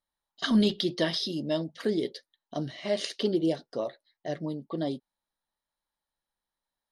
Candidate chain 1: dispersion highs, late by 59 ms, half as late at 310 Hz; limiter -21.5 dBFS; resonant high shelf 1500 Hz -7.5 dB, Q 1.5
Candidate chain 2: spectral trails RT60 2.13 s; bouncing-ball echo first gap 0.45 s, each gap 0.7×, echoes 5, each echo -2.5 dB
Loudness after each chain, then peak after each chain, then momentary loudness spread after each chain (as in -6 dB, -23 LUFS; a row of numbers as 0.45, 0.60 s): -33.5, -22.5 LUFS; -20.5, -6.5 dBFS; 7, 12 LU